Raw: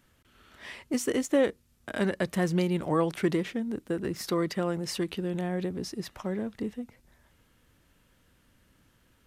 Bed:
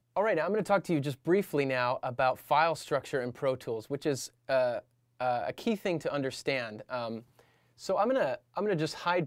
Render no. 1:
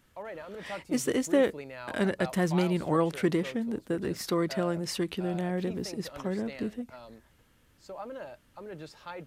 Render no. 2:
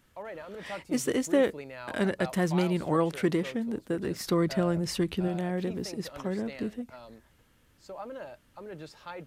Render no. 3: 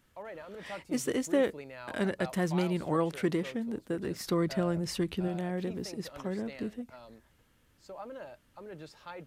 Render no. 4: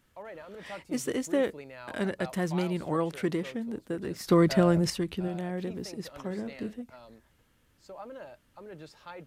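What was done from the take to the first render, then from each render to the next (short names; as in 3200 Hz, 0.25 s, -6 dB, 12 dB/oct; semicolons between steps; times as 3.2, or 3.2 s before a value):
add bed -13 dB
4.27–5.28 low shelf 150 Hz +11.5 dB
gain -3 dB
4.3–4.9 gain +7.5 dB; 6.27–6.73 doubler 34 ms -12 dB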